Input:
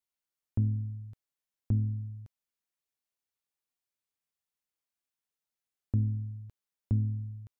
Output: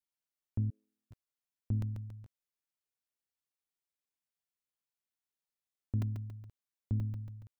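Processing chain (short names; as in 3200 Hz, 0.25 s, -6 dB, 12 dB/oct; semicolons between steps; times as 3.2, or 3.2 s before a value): 0.7–1.11 steep high-pass 390 Hz 36 dB/oct; crackling interface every 0.14 s, samples 128, zero, from 0.84; gain -5 dB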